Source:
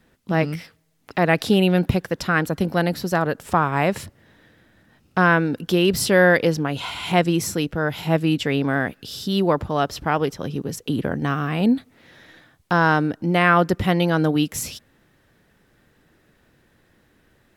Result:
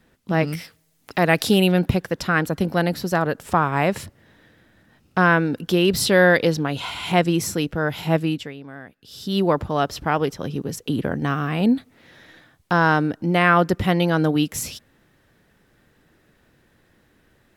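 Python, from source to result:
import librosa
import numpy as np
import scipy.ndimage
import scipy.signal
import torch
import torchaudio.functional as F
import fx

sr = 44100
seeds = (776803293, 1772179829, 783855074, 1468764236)

y = fx.high_shelf(x, sr, hz=4600.0, db=8.5, at=(0.47, 1.72))
y = fx.peak_eq(y, sr, hz=3900.0, db=7.0, octaves=0.34, at=(5.93, 6.76))
y = fx.edit(y, sr, fx.fade_down_up(start_s=8.16, length_s=1.23, db=-17.0, fade_s=0.38), tone=tone)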